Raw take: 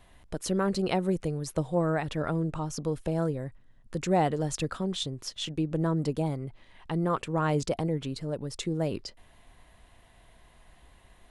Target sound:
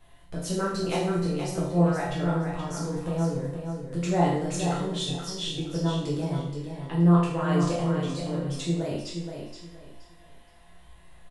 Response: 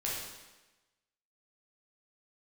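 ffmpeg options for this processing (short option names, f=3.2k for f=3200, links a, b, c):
-filter_complex "[0:a]aecho=1:1:474|948|1422:0.447|0.112|0.0279[a];[1:a]atrim=start_sample=2205,asetrate=74970,aresample=44100[b];[a][b]afir=irnorm=-1:irlink=0,volume=1.5dB"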